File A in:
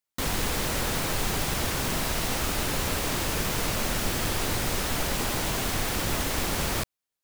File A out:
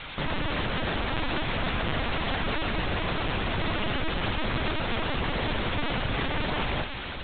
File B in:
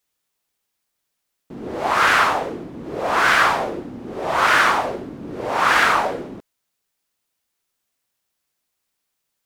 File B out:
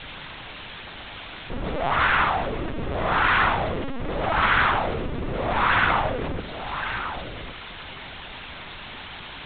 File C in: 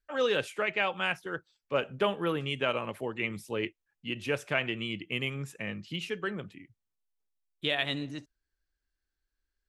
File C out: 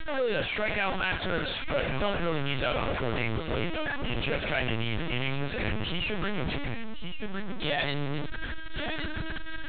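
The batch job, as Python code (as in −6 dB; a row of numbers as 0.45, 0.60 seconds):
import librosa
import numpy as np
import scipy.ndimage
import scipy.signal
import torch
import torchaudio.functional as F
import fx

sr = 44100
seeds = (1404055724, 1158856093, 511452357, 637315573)

p1 = x + 0.5 * 10.0 ** (-17.5 / 20.0) * np.sign(x)
p2 = fx.peak_eq(p1, sr, hz=420.0, db=-2.0, octaves=0.22)
p3 = p2 + fx.echo_single(p2, sr, ms=1113, db=-9.0, dry=0)
p4 = fx.lpc_vocoder(p3, sr, seeds[0], excitation='pitch_kept', order=10)
y = p4 * 10.0 ** (-7.0 / 20.0)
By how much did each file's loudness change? −2.0, −5.5, +1.5 LU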